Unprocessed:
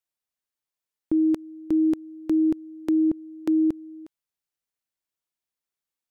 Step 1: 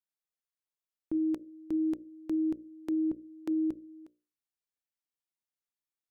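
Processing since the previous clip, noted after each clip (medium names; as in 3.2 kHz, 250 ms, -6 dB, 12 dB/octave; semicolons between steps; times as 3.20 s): hum notches 60/120/180/240/300/360/420/480/540/600 Hz; trim -8.5 dB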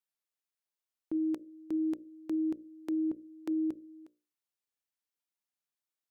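bass shelf 130 Hz -11.5 dB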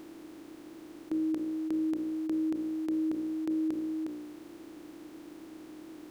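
spectral levelling over time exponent 0.2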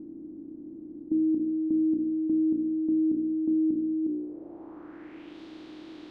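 low-pass sweep 260 Hz -> 3.8 kHz, 4.02–5.40 s; trim +2.5 dB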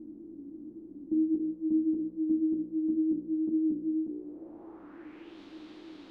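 three-phase chorus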